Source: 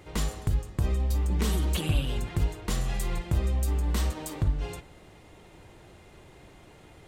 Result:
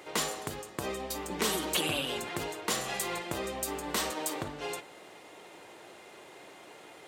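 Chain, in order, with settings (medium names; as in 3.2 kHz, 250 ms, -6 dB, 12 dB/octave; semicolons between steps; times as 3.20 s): high-pass 390 Hz 12 dB/octave; trim +5 dB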